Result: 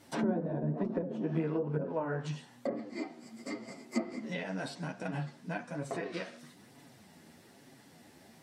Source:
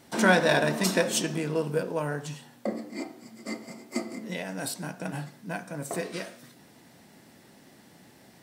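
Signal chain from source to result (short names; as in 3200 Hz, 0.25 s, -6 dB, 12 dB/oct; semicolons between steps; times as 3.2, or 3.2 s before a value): treble ducked by the level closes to 320 Hz, closed at -21 dBFS; chorus voices 2, 1.1 Hz, delay 10 ms, depth 3 ms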